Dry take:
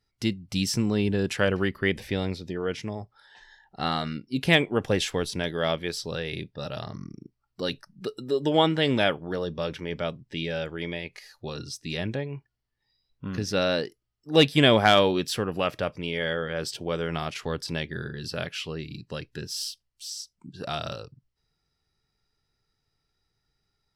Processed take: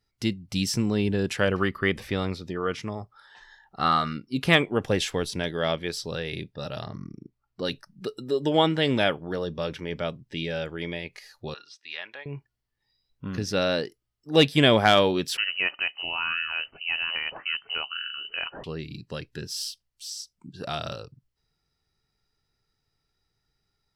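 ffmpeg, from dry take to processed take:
-filter_complex "[0:a]asettb=1/sr,asplit=3[s0][s1][s2];[s0]atrim=end=1.544[s3];[s1]atrim=start=1.54:end=4.63,asetpts=PTS-STARTPTS,afade=t=in:d=0.004:c=qsin,afade=t=out:st=3.086:d=0.004:c=qsin,equalizer=f=1200:w=4.1:g=12.5[s4];[s2]atrim=start=4.626[s5];[s3][s4]acrossfade=d=0.004:c1=hsin:c2=qsin[s6];[s6][s5]acrossfade=d=0.004:c1=qsin:c2=hsin,asettb=1/sr,asplit=3[s7][s8][s9];[s7]atrim=end=5.394[s10];[s8]atrim=start=5.39:end=5.92,asetpts=PTS-STARTPTS,afade=t=in:d=0.004:c=qsin,afade=t=out:st=0.526:d=0.004:c=qsin,lowpass=f=11000:w=0.5412,lowpass=f=11000:w=1.3066[s11];[s9]atrim=start=5.916[s12];[s10][s11]acrossfade=d=0.004:c1=hsin:c2=qsin[s13];[s13][s12]acrossfade=d=0.004:c1=qsin:c2=hsin,asettb=1/sr,asplit=3[s14][s15][s16];[s14]atrim=end=6.874[s17];[s15]atrim=start=6.87:end=7.65,asetpts=PTS-STARTPTS,afade=t=in:d=0.004:c=qsin,afade=t=out:st=0.776:d=0.004:c=qsin,aemphasis=mode=reproduction:type=50fm[s18];[s16]atrim=start=7.646[s19];[s17][s18]acrossfade=d=0.004:c1=hsin:c2=qsin[s20];[s20][s19]acrossfade=d=0.004:c1=qsin:c2=hsin,asettb=1/sr,asplit=3[s21][s22][s23];[s21]atrim=end=11.544[s24];[s22]atrim=start=11.54:end=12.26,asetpts=PTS-STARTPTS,afade=t=in:d=0.004:c=qsin,afade=t=out:st=0.716:d=0.004:c=qsin,asuperpass=centerf=1800:order=4:qfactor=0.71[s25];[s23]atrim=start=12.256[s26];[s24][s25]acrossfade=d=0.004:c1=hsin:c2=qsin[s27];[s27][s26]acrossfade=d=0.004:c1=qsin:c2=hsin,asettb=1/sr,asplit=3[s28][s29][s30];[s28]atrim=end=15.374[s31];[s29]atrim=start=15.37:end=18.64,asetpts=PTS-STARTPTS,afade=t=in:d=0.004:c=qsin,afade=t=out:st=3.266:d=0.004:c=qsin,lowpass=f=2600:t=q:w=0.5098,lowpass=f=2600:t=q:w=0.6013,lowpass=f=2600:t=q:w=0.9,lowpass=f=2600:t=q:w=2.563,afreqshift=-3100[s32];[s30]atrim=start=18.636[s33];[s31][s32]acrossfade=d=0.004:c1=hsin:c2=qsin[s34];[s34][s33]acrossfade=d=0.004:c1=qsin:c2=hsin"

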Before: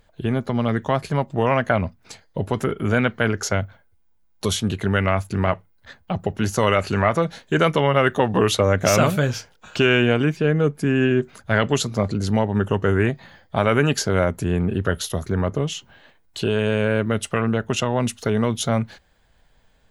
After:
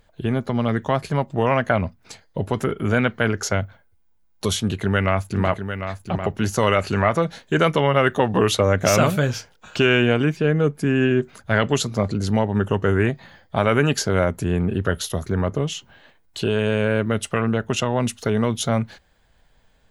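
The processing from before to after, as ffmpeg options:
-filter_complex "[0:a]asettb=1/sr,asplit=3[s0][s1][s2];[s0]atrim=end=4.614[s3];[s1]atrim=start=4.61:end=6.7,asetpts=PTS-STARTPTS,afade=t=in:d=0.004:c=qsin,afade=t=out:st=2.086:d=0.004:c=qsin,aecho=1:1:749:0.376,atrim=end_sample=92169[s4];[s2]atrim=start=6.696[s5];[s3][s4]acrossfade=d=0.004:c1=hsin:c2=qsin[s6];[s6][s5]acrossfade=d=0.004:c1=qsin:c2=hsin"

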